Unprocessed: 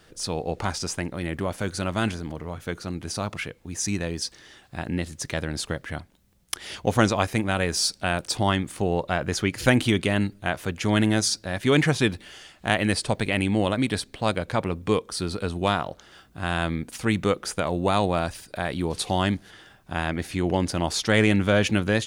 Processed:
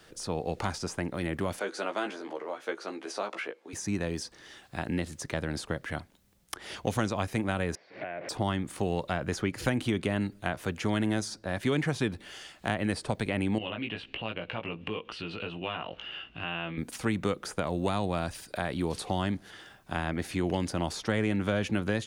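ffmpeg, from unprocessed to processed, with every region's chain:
-filter_complex "[0:a]asettb=1/sr,asplit=3[a][b][c];[a]atrim=end=1.594[d];[b]atrim=start=1.59:end=3.73,asetpts=PTS-STARTPTS,afade=t=in:d=0.004:c=qsin,afade=t=out:st=2.136:d=0.004:c=qsin,highpass=f=380:w=0.5412,highpass=f=380:w=1.3066,aemphasis=mode=reproduction:type=bsi,asplit=2[e][f];[f]adelay=15,volume=-5dB[g];[e][g]amix=inputs=2:normalize=0,atrim=end_sample=94374[h];[c]atrim=start=3.726[i];[d][h]acrossfade=d=0.004:c1=hsin:c2=qsin[j];[j][i]acrossfade=d=0.004:c1=qsin:c2=hsin,asettb=1/sr,asplit=3[k][l][m];[k]atrim=end=7.754[n];[l]atrim=start=7.75:end=8.29,asetpts=PTS-STARTPTS,afade=t=in:d=0.004:c=qsin,afade=t=out:st=0.536:d=0.004:c=qsin,aeval=exprs='val(0)+0.5*0.0355*sgn(val(0))':c=same,acompressor=threshold=-32dB:ratio=8:attack=3.2:release=140:knee=1:detection=peak,highpass=200,equalizer=f=210:t=q:w=4:g=-9,equalizer=f=630:t=q:w=4:g=6,equalizer=f=910:t=q:w=4:g=-6,equalizer=f=1.3k:t=q:w=4:g=-9,equalizer=f=2.1k:t=q:w=4:g=8,lowpass=f=2.2k:w=0.5412,lowpass=f=2.2k:w=1.3066[o];[m]atrim=start=8.286[p];[n][o]acrossfade=d=0.004:c1=hsin:c2=qsin[q];[q][p]acrossfade=d=0.004:c1=qsin:c2=hsin,asettb=1/sr,asplit=3[r][s][t];[r]atrim=end=13.584[u];[s]atrim=start=13.58:end=16.78,asetpts=PTS-STARTPTS,afade=t=in:d=0.004:c=qsin,afade=t=out:st=3.196:d=0.004:c=qsin,asplit=2[v][w];[w]adelay=18,volume=-4dB[x];[v][x]amix=inputs=2:normalize=0,atrim=end_sample=141120,acompressor=threshold=-37dB:ratio=2.5:attack=3.2:release=140:knee=1:detection=peak,lowpass=f=2.8k:t=q:w=14[y];[t]atrim=start=16.776[z];[u][y]acrossfade=d=0.004:c1=hsin:c2=qsin[aa];[aa][z]acrossfade=d=0.004:c1=qsin:c2=hsin,lowshelf=f=160:g=-6,acrossover=split=250|1700[ab][ac][ad];[ab]acompressor=threshold=-29dB:ratio=4[ae];[ac]acompressor=threshold=-30dB:ratio=4[af];[ad]acompressor=threshold=-40dB:ratio=4[ag];[ae][af][ag]amix=inputs=3:normalize=0"

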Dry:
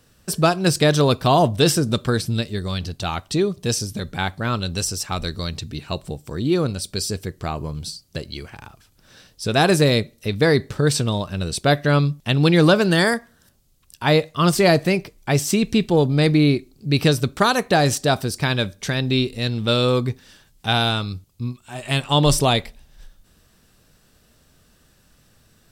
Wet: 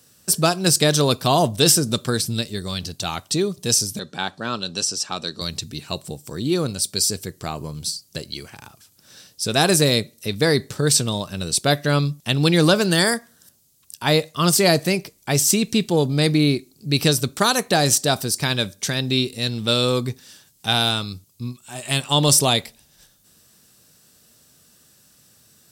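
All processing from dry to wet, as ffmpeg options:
-filter_complex "[0:a]asettb=1/sr,asplit=3[a][b][c];[a]atrim=end=3.994[d];[b]atrim=start=3.99:end=5.41,asetpts=PTS-STARTPTS,afade=t=in:d=0.004:c=qsin,afade=t=out:st=1.416:d=0.004:c=qsin,highpass=190,lowpass=5.6k,bandreject=f=2.1k:w=5.4[e];[c]atrim=start=5.406[f];[d][e]acrossfade=d=0.004:c1=hsin:c2=qsin[g];[g][f]acrossfade=d=0.004:c1=qsin:c2=hsin,highpass=110,bass=f=250:g=1,treble=f=4k:g=11,volume=-2dB"

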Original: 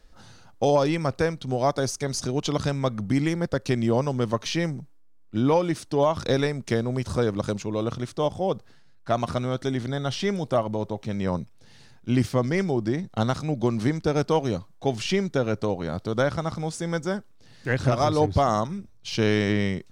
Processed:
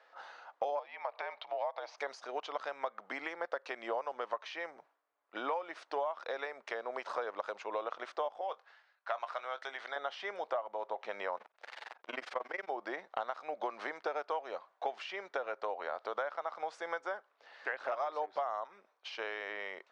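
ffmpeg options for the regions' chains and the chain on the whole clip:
-filter_complex "[0:a]asettb=1/sr,asplit=3[a][b][c];[a]atrim=end=0.794[d];[b]atrim=start=0.79:end=1.98,asetpts=PTS-STARTPTS,afade=t=in:d=0.004:c=qsin,afade=t=out:st=1.186:d=0.004:c=qsin,afreqshift=-65,acompressor=threshold=-32dB:ratio=3:attack=3.2:release=140:knee=1:detection=peak,highpass=360,equalizer=f=390:t=q:w=4:g=-10,equalizer=f=620:t=q:w=4:g=6,equalizer=f=880:t=q:w=4:g=7,equalizer=f=1.4k:t=q:w=4:g=-5,equalizer=f=2.3k:t=q:w=4:g=5,equalizer=f=3.8k:t=q:w=4:g=3,lowpass=f=4.8k:w=0.5412,lowpass=f=4.8k:w=1.3066[e];[c]atrim=start=1.976[f];[d][e]acrossfade=d=0.004:c1=hsin:c2=qsin[g];[g][f]acrossfade=d=0.004:c1=qsin:c2=hsin,asettb=1/sr,asplit=3[h][i][j];[h]atrim=end=8.414[k];[i]atrim=start=8.41:end=9.96,asetpts=PTS-STARTPTS,afade=t=in:d=0.004:c=qsin,afade=t=out:st=1.546:d=0.004:c=qsin,highpass=f=1.3k:p=1,asplit=2[l][m];[m]adelay=22,volume=-13.5dB[n];[l][n]amix=inputs=2:normalize=0,atrim=end_sample=68355[o];[j]atrim=start=9.956[p];[k][o]acrossfade=d=0.004:c1=hsin:c2=qsin[q];[q][p]acrossfade=d=0.004:c1=qsin:c2=hsin,asettb=1/sr,asplit=3[r][s][t];[r]atrim=end=11.374[u];[s]atrim=start=11.37:end=12.68,asetpts=PTS-STARTPTS,afade=t=in:d=0.004:c=qsin,afade=t=out:st=1.306:d=0.004:c=qsin,aeval=exprs='val(0)+0.5*0.0188*sgn(val(0))':c=same,tremolo=f=22:d=0.947[v];[t]atrim=start=12.676[w];[u][v]acrossfade=d=0.004:c1=hsin:c2=qsin[x];[x][w]acrossfade=d=0.004:c1=qsin:c2=hsin,highpass=f=620:w=0.5412,highpass=f=620:w=1.3066,acompressor=threshold=-39dB:ratio=10,lowpass=1.9k,volume=6.5dB"

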